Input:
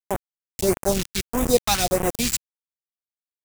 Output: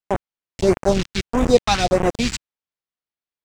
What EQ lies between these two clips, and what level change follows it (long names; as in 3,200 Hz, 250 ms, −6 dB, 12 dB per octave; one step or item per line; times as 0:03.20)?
high-frequency loss of the air 130 metres
+5.0 dB